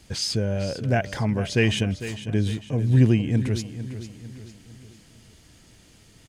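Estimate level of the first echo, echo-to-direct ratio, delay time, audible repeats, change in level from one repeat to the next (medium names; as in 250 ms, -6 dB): -12.5 dB, -11.5 dB, 451 ms, 4, -7.0 dB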